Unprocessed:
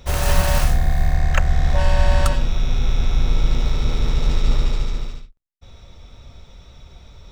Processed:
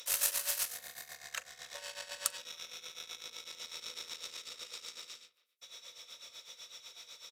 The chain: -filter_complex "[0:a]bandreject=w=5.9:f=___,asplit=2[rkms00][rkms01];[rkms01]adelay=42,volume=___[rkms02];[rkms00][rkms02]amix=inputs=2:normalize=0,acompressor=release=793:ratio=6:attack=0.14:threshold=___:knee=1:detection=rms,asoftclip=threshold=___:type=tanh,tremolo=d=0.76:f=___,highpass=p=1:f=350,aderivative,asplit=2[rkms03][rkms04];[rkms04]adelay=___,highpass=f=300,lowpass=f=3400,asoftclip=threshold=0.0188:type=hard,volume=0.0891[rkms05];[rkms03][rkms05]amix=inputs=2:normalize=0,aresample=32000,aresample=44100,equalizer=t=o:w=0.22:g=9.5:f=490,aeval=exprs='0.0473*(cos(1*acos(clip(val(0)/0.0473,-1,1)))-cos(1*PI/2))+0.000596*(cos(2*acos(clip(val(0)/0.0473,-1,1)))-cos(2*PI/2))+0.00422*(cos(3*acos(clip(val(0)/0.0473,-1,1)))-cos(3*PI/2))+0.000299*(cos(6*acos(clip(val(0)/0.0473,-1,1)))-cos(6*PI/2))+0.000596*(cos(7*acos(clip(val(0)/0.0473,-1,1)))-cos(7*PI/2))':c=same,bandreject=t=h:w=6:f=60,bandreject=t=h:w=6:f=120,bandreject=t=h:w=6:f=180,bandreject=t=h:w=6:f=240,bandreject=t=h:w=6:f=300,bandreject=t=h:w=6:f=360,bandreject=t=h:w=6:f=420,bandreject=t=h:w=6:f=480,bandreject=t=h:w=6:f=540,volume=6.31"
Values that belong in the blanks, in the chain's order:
800, 0.282, 0.0891, 0.0944, 8, 280